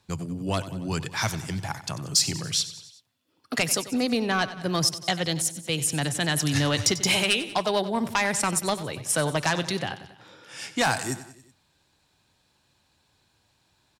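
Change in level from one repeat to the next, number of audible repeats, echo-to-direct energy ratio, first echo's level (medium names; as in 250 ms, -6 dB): -5.0 dB, 4, -13.0 dB, -14.5 dB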